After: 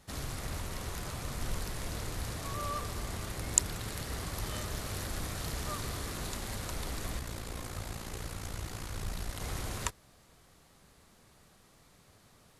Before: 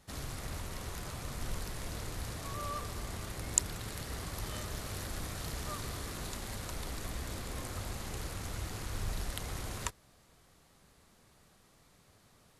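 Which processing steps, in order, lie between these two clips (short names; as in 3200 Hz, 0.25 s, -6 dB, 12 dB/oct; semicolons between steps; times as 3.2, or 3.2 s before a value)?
7.19–9.41 AM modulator 57 Hz, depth 50%; gain +2.5 dB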